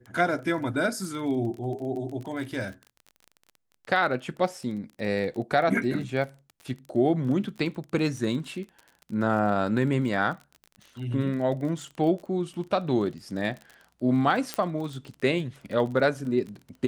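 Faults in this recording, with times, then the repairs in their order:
crackle 30/s -35 dBFS
14.54 pop -12 dBFS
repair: de-click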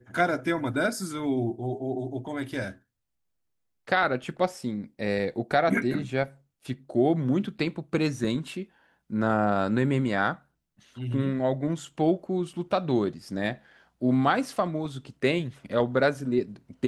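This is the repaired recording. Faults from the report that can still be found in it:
14.54 pop

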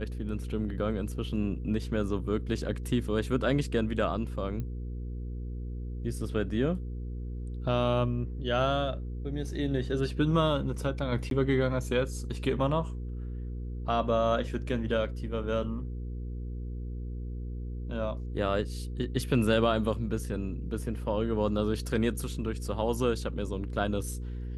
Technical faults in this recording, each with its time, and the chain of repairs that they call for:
hum 60 Hz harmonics 8 -36 dBFS
4.6 pop -25 dBFS
11.3–11.31 gap 12 ms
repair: de-click; de-hum 60 Hz, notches 8; interpolate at 11.3, 12 ms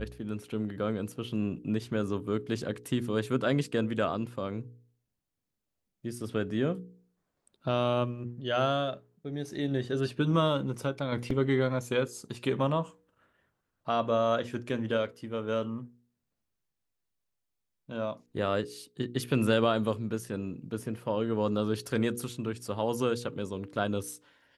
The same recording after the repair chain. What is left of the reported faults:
4.6 pop

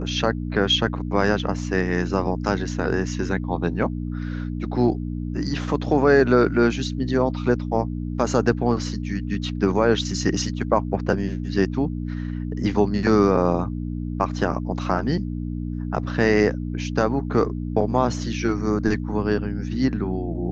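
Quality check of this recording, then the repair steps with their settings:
hum 60 Hz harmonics 5 -28 dBFS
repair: de-hum 60 Hz, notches 5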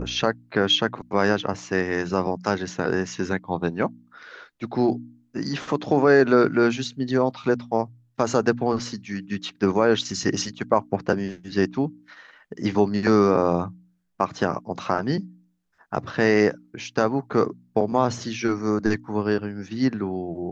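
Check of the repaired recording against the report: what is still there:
none

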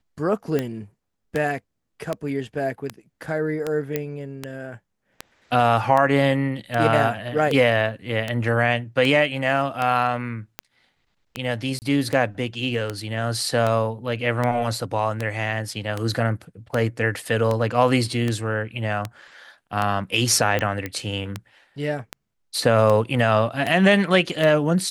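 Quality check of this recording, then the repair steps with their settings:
tick 78 rpm -11 dBFS
3.96 pop -10 dBFS
11.79–11.82 gap 29 ms
20.86 pop -14 dBFS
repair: de-click; interpolate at 11.79, 29 ms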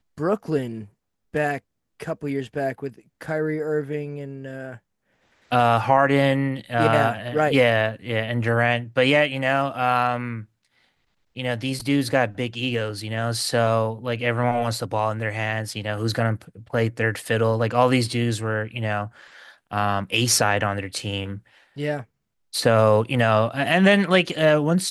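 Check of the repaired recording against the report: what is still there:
none

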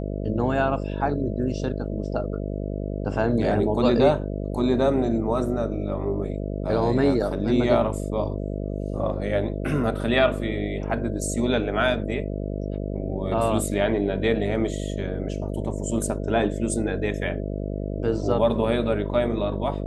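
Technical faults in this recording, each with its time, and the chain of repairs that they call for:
buzz 50 Hz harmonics 13 -29 dBFS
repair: de-hum 50 Hz, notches 13

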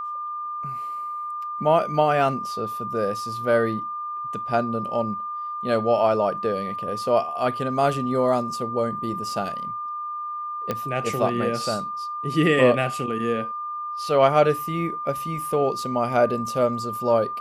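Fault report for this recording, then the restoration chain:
tone 1200 Hz -28 dBFS
10.71 pop -12 dBFS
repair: de-click; notch 1200 Hz, Q 30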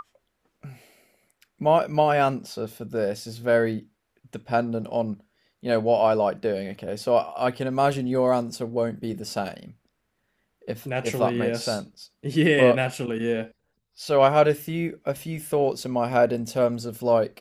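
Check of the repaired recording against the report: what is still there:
none

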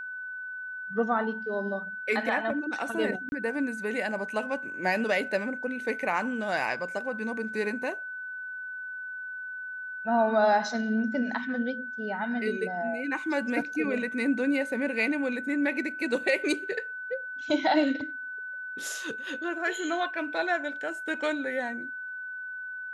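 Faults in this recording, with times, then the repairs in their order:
tone 1500 Hz -35 dBFS
3.29–3.32 gap 31 ms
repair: notch 1500 Hz, Q 30; interpolate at 3.29, 31 ms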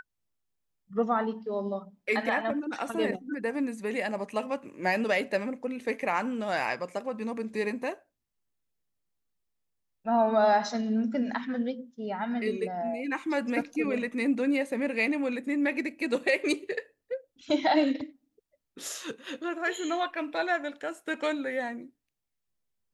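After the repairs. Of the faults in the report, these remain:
none

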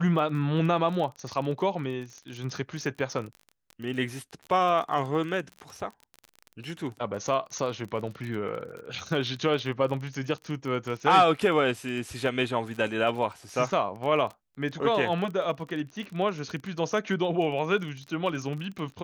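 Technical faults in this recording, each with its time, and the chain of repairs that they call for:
crackle 28/s -34 dBFS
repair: de-click

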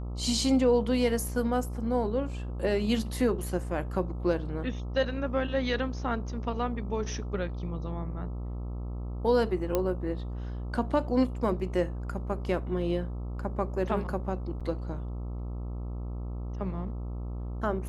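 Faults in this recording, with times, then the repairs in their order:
buzz 60 Hz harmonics 22 -35 dBFS
9.75 pop -13 dBFS
14.6–14.61 gap 6.6 ms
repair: de-click; de-hum 60 Hz, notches 22; interpolate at 14.6, 6.6 ms

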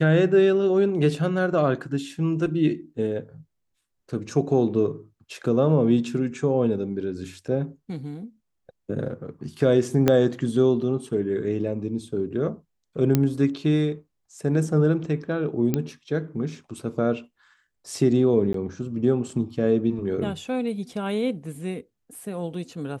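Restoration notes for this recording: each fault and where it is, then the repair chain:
10.08 pop -6 dBFS
13.15 pop -7 dBFS
15.74 pop -10 dBFS
18.53–18.54 gap 13 ms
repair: de-click; interpolate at 18.53, 13 ms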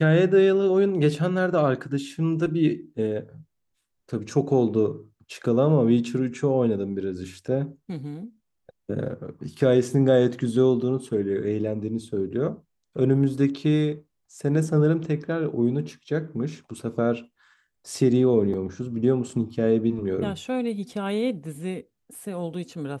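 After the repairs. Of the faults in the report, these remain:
10.08 pop

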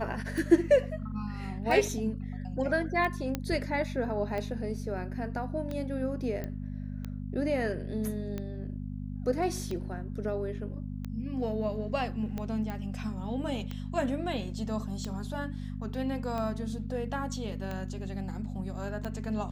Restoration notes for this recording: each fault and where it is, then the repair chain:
hum 50 Hz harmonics 5 -37 dBFS
tick 45 rpm
3.35 pop -16 dBFS
6.44 pop -23 dBFS
12.7 pop -24 dBFS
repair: de-click; de-hum 50 Hz, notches 5

